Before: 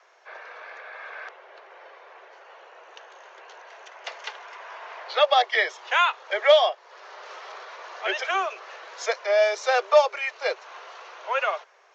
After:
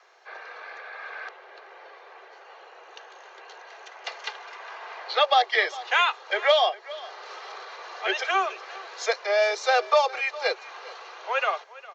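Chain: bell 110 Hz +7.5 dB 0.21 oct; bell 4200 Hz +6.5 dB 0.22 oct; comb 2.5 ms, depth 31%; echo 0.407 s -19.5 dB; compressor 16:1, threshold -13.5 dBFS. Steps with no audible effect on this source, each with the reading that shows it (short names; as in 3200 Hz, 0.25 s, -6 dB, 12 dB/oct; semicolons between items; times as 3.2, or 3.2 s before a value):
bell 110 Hz: input band starts at 360 Hz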